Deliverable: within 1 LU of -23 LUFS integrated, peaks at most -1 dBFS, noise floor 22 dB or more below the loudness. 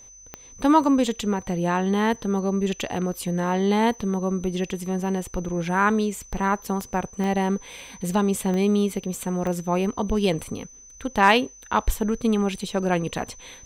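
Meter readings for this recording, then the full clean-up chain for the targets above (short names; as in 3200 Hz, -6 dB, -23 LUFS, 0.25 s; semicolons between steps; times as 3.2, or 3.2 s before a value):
clicks 5; steady tone 6100 Hz; tone level -45 dBFS; loudness -24.0 LUFS; peak -4.5 dBFS; loudness target -23.0 LUFS
-> de-click; notch 6100 Hz, Q 30; gain +1 dB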